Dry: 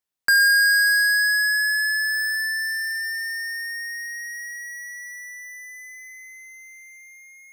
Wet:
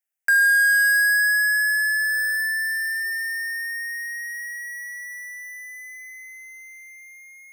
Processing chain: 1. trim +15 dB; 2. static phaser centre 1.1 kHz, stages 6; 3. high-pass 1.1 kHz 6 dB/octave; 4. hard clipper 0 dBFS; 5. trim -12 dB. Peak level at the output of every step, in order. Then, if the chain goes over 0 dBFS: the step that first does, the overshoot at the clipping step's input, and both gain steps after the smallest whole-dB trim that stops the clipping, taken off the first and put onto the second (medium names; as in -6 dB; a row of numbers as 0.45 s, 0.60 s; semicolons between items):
+0.5 dBFS, +2.5 dBFS, +4.0 dBFS, 0.0 dBFS, -12.0 dBFS; step 1, 4.0 dB; step 1 +11 dB, step 5 -8 dB